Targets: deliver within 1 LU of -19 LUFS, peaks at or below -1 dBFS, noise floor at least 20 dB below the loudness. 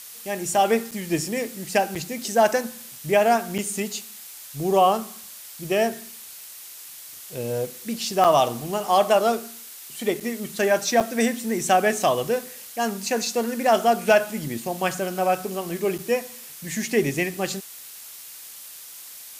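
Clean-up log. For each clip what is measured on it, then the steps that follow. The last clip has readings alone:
dropouts 7; longest dropout 6.4 ms; noise floor -42 dBFS; noise floor target -44 dBFS; loudness -23.5 LUFS; peak level -7.0 dBFS; loudness target -19.0 LUFS
-> interpolate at 0.91/1.95/3.58/8.24/10.20/11.00/15.98 s, 6.4 ms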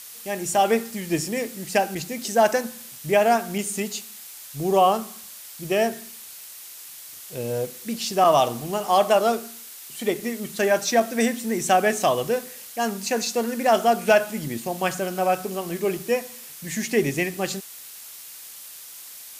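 dropouts 0; noise floor -42 dBFS; noise floor target -44 dBFS
-> noise reduction 6 dB, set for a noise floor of -42 dBFS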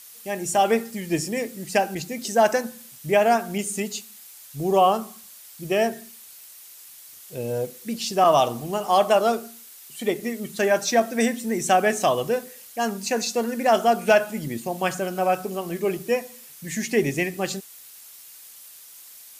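noise floor -46 dBFS; loudness -23.5 LUFS; peak level -7.0 dBFS; loudness target -19.0 LUFS
-> trim +4.5 dB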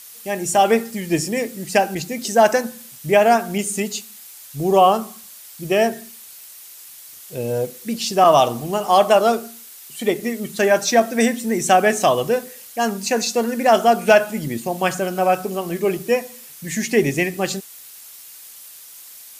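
loudness -19.0 LUFS; peak level -2.5 dBFS; noise floor -41 dBFS

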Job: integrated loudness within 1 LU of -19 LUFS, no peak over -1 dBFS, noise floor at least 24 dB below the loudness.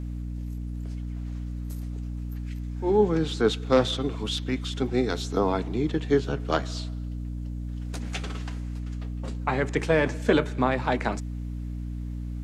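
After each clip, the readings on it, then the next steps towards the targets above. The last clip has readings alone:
hum 60 Hz; highest harmonic 300 Hz; hum level -30 dBFS; loudness -28.0 LUFS; peak level -7.5 dBFS; loudness target -19.0 LUFS
-> de-hum 60 Hz, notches 5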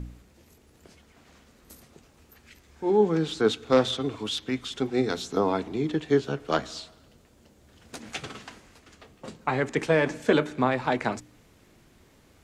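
hum not found; loudness -26.5 LUFS; peak level -7.0 dBFS; loudness target -19.0 LUFS
-> trim +7.5 dB; peak limiter -1 dBFS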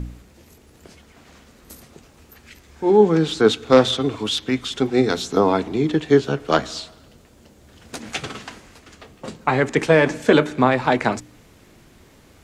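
loudness -19.0 LUFS; peak level -1.0 dBFS; noise floor -51 dBFS

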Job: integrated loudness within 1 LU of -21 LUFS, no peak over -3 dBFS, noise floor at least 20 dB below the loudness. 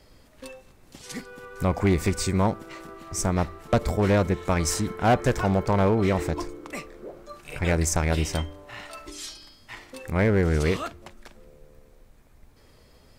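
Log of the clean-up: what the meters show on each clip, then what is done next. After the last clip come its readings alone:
clipped samples 0.9%; clipping level -14.0 dBFS; loudness -25.0 LUFS; peak level -14.0 dBFS; loudness target -21.0 LUFS
-> clip repair -14 dBFS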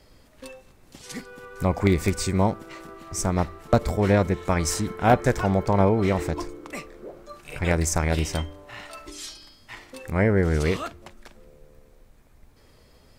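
clipped samples 0.0%; loudness -24.0 LUFS; peak level -5.0 dBFS; loudness target -21.0 LUFS
-> trim +3 dB; peak limiter -3 dBFS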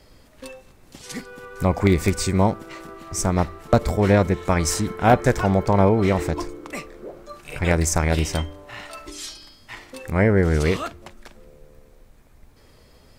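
loudness -21.0 LUFS; peak level -3.0 dBFS; noise floor -52 dBFS

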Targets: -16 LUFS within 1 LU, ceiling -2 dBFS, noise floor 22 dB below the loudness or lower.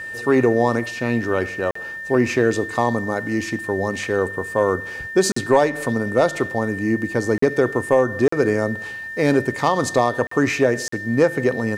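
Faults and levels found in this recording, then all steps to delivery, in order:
dropouts 6; longest dropout 44 ms; steady tone 1.8 kHz; tone level -29 dBFS; loudness -20.5 LUFS; peak level -5.5 dBFS; loudness target -16.0 LUFS
-> interpolate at 1.71/5.32/7.38/8.28/10.27/10.88 s, 44 ms; band-stop 1.8 kHz, Q 30; trim +4.5 dB; peak limiter -2 dBFS

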